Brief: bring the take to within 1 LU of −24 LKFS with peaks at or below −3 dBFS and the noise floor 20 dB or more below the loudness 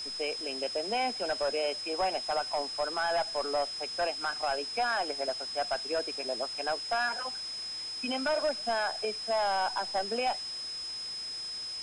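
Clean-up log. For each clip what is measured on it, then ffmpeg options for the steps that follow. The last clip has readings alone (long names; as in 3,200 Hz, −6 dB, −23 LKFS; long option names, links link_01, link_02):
interfering tone 5,100 Hz; level of the tone −36 dBFS; background noise floor −39 dBFS; target noise floor −52 dBFS; integrated loudness −31.5 LKFS; sample peak −21.5 dBFS; target loudness −24.0 LKFS
→ -af "bandreject=frequency=5100:width=30"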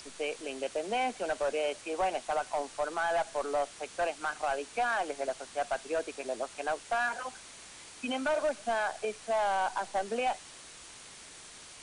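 interfering tone none found; background noise floor −50 dBFS; target noise floor −53 dBFS
→ -af "afftdn=noise_reduction=6:noise_floor=-50"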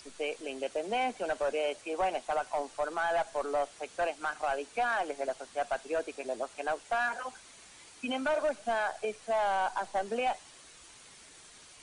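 background noise floor −55 dBFS; integrated loudness −33.0 LKFS; sample peak −23.0 dBFS; target loudness −24.0 LKFS
→ -af "volume=9dB"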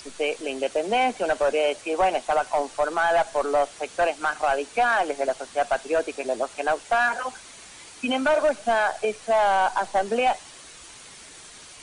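integrated loudness −24.0 LKFS; sample peak −14.0 dBFS; background noise floor −46 dBFS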